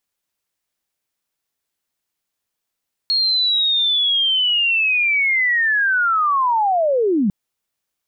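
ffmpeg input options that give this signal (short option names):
-f lavfi -i "aevalsrc='pow(10,(-14.5+0.5*t/4.2)/20)*sin(2*PI*(4300*t-4120*t*t/(2*4.2)))':d=4.2:s=44100"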